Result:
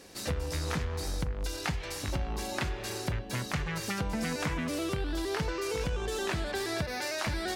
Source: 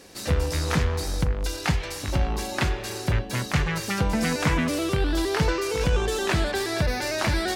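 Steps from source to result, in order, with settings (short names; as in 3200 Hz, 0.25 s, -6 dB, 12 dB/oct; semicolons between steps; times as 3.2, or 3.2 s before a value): 6.84–7.25 HPF 220 Hz -> 720 Hz 6 dB/oct; compressor 4:1, threshold -26 dBFS, peak gain reduction 8 dB; gain -3.5 dB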